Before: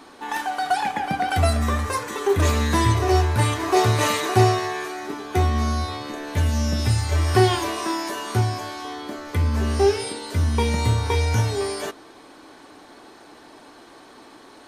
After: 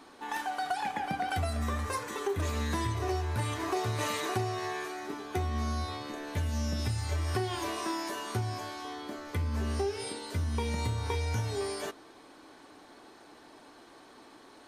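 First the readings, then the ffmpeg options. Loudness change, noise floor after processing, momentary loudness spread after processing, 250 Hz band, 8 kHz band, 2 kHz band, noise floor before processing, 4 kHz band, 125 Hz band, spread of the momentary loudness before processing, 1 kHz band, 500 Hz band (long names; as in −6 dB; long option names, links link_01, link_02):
−11.5 dB, −55 dBFS, 21 LU, −11.0 dB, −10.5 dB, −10.0 dB, −47 dBFS, −10.5 dB, −11.5 dB, 11 LU, −10.5 dB, −12.0 dB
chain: -af "acompressor=threshold=-20dB:ratio=10,volume=-7.5dB"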